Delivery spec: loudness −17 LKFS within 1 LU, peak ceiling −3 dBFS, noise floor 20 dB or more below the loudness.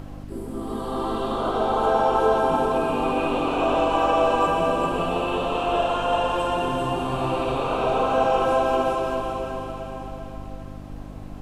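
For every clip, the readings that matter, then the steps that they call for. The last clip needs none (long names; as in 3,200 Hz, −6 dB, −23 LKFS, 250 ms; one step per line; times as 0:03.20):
mains hum 50 Hz; hum harmonics up to 300 Hz; level of the hum −36 dBFS; background noise floor −37 dBFS; target noise floor −43 dBFS; integrated loudness −23.0 LKFS; sample peak −7.5 dBFS; target loudness −17.0 LKFS
→ hum removal 50 Hz, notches 6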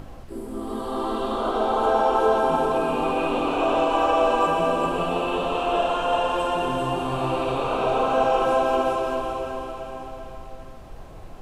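mains hum none found; background noise floor −40 dBFS; target noise floor −43 dBFS
→ noise reduction from a noise print 6 dB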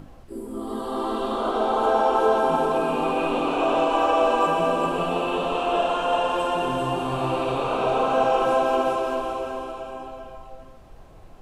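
background noise floor −45 dBFS; integrated loudness −23.0 LKFS; sample peak −7.5 dBFS; target loudness −17.0 LKFS
→ level +6 dB
brickwall limiter −3 dBFS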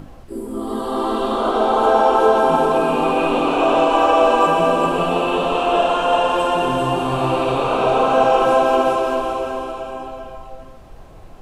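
integrated loudness −17.0 LKFS; sample peak −3.0 dBFS; background noise floor −39 dBFS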